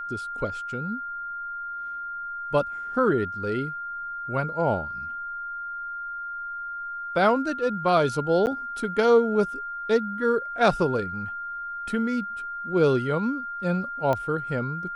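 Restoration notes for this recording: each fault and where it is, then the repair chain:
whine 1.4 kHz -31 dBFS
8.46–8.47 s: dropout 9.4 ms
14.13 s: pop -14 dBFS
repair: de-click; band-stop 1.4 kHz, Q 30; interpolate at 8.46 s, 9.4 ms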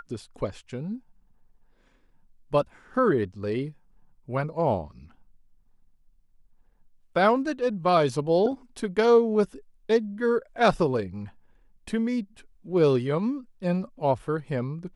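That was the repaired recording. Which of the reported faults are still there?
nothing left

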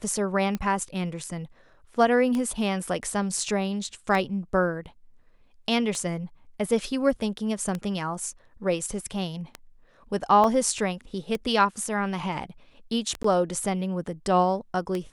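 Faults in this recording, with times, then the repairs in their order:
tick 33 1/3 rpm -16 dBFS
10.44 s: dropout 2.9 ms
13.23–13.24 s: dropout 14 ms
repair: de-click; interpolate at 10.44 s, 2.9 ms; interpolate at 13.23 s, 14 ms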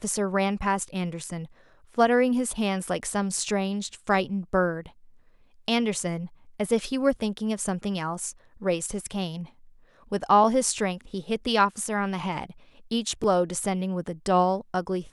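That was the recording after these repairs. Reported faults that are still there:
nothing left

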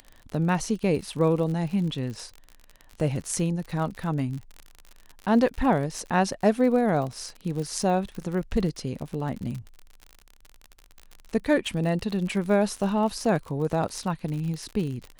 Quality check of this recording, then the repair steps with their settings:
crackle 51 per s -32 dBFS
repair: de-click

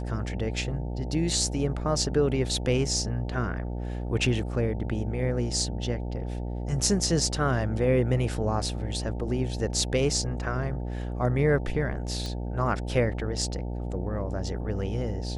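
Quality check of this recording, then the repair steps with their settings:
buzz 60 Hz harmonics 15 -32 dBFS
12.26 s: pop -22 dBFS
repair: de-click; de-hum 60 Hz, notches 15

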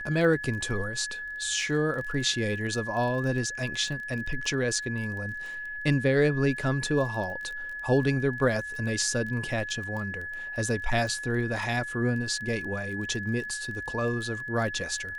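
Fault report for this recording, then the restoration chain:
crackle 20 per s -35 dBFS
whine 1.7 kHz -34 dBFS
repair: de-click; band-stop 1.7 kHz, Q 30

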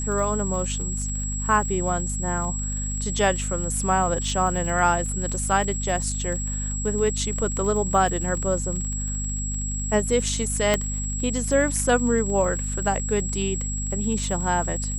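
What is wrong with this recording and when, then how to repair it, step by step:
crackle 41 per s -31 dBFS
hum 50 Hz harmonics 5 -29 dBFS
whine 7.7 kHz -30 dBFS
10.74 s: pop -6 dBFS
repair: de-click; band-stop 7.7 kHz, Q 30; de-hum 50 Hz, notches 5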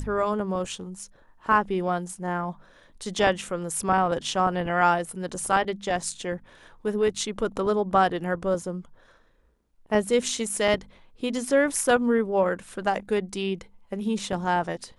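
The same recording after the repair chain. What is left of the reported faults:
10.74 s: pop

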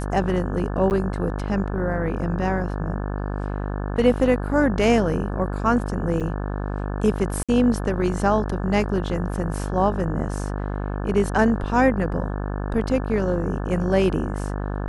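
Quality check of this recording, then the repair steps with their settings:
buzz 50 Hz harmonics 35 -27 dBFS
0.90–0.91 s: dropout 9.4 ms
6.20–6.21 s: dropout 6.9 ms
7.43–7.49 s: dropout 56 ms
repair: de-hum 50 Hz, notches 35; interpolate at 0.90 s, 9.4 ms; interpolate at 6.20 s, 6.9 ms; interpolate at 7.43 s, 56 ms

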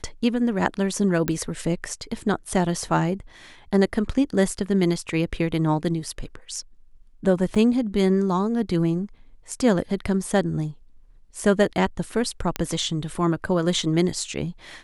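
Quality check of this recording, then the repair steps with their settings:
1.28 s: pop -11 dBFS
7.55–7.56 s: dropout 6.8 ms
12.56 s: pop -9 dBFS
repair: de-click; interpolate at 7.55 s, 6.8 ms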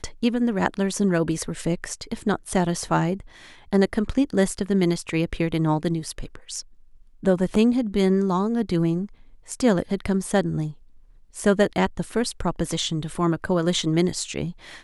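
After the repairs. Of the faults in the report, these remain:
nothing left

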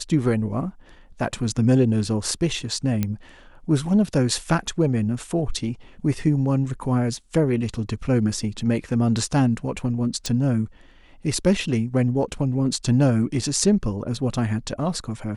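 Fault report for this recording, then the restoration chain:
3.03 s: pop -10 dBFS
10.26 s: pop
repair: de-click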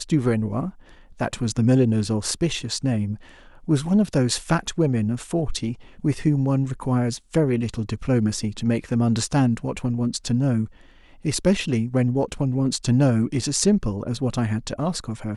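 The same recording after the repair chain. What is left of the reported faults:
nothing left

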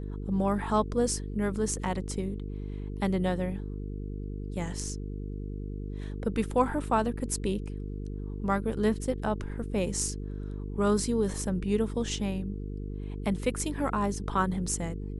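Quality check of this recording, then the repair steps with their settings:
buzz 50 Hz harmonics 9 -36 dBFS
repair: de-hum 50 Hz, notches 9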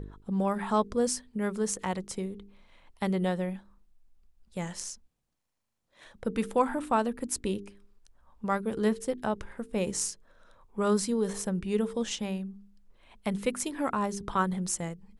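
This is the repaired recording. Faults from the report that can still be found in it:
nothing left

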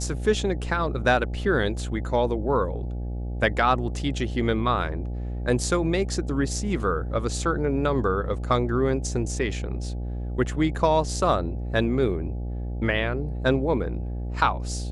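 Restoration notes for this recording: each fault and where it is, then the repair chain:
buzz 60 Hz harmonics 14 -30 dBFS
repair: de-hum 60 Hz, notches 14

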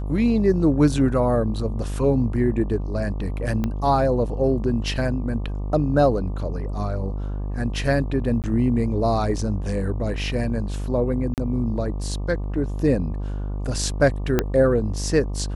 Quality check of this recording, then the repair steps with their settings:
buzz 50 Hz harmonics 24 -27 dBFS
3.64 s: pop -13 dBFS
8.42–8.44 s: dropout 18 ms
11.34–11.38 s: dropout 38 ms
14.39 s: pop -5 dBFS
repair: de-click; de-hum 50 Hz, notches 24; interpolate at 8.42 s, 18 ms; interpolate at 11.34 s, 38 ms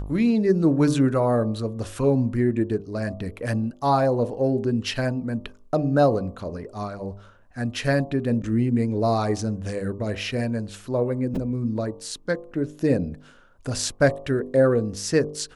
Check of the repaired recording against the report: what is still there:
3.64 s: pop
14.39 s: pop

